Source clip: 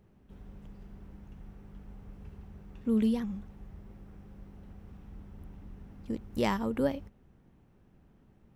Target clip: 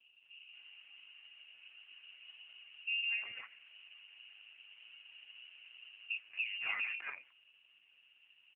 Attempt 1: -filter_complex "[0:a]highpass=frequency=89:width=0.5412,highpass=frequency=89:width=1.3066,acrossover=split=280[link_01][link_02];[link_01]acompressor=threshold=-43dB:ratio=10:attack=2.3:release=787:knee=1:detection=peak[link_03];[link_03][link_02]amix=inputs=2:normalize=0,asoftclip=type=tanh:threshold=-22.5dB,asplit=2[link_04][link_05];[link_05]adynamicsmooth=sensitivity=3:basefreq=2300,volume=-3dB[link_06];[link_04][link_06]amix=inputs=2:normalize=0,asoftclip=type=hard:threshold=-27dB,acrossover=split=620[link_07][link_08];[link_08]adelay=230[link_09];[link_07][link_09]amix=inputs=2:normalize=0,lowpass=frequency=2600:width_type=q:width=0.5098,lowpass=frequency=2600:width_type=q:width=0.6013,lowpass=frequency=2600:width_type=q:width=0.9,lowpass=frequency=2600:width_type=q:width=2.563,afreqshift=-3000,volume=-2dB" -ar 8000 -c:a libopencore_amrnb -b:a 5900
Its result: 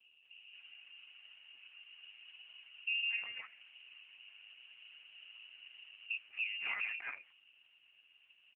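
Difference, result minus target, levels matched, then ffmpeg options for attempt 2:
soft clipping: distortion +15 dB
-filter_complex "[0:a]highpass=frequency=89:width=0.5412,highpass=frequency=89:width=1.3066,acrossover=split=280[link_01][link_02];[link_01]acompressor=threshold=-43dB:ratio=10:attack=2.3:release=787:knee=1:detection=peak[link_03];[link_03][link_02]amix=inputs=2:normalize=0,asoftclip=type=tanh:threshold=-13dB,asplit=2[link_04][link_05];[link_05]adynamicsmooth=sensitivity=3:basefreq=2300,volume=-3dB[link_06];[link_04][link_06]amix=inputs=2:normalize=0,asoftclip=type=hard:threshold=-27dB,acrossover=split=620[link_07][link_08];[link_08]adelay=230[link_09];[link_07][link_09]amix=inputs=2:normalize=0,lowpass=frequency=2600:width_type=q:width=0.5098,lowpass=frequency=2600:width_type=q:width=0.6013,lowpass=frequency=2600:width_type=q:width=0.9,lowpass=frequency=2600:width_type=q:width=2.563,afreqshift=-3000,volume=-2dB" -ar 8000 -c:a libopencore_amrnb -b:a 5900

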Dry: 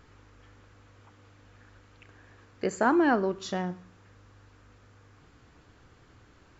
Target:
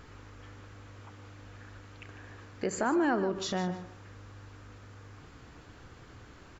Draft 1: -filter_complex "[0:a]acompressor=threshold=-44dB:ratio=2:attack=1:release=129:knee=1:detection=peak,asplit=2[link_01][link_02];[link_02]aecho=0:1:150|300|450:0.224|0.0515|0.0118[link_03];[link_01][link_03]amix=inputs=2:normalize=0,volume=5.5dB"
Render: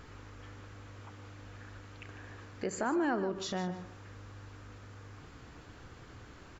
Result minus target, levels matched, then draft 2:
downward compressor: peak gain reduction +3.5 dB
-filter_complex "[0:a]acompressor=threshold=-37dB:ratio=2:attack=1:release=129:knee=1:detection=peak,asplit=2[link_01][link_02];[link_02]aecho=0:1:150|300|450:0.224|0.0515|0.0118[link_03];[link_01][link_03]amix=inputs=2:normalize=0,volume=5.5dB"

